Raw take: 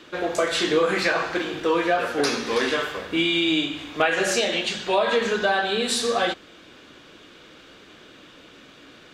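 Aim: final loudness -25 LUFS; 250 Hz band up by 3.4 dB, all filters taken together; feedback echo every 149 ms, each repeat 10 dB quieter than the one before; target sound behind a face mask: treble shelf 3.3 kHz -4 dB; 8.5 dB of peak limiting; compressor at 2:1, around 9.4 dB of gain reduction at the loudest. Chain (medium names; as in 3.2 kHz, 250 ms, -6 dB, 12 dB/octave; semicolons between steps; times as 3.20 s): peaking EQ 250 Hz +5 dB; compression 2:1, threshold -33 dBFS; peak limiter -21.5 dBFS; treble shelf 3.3 kHz -4 dB; feedback delay 149 ms, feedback 32%, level -10 dB; trim +6.5 dB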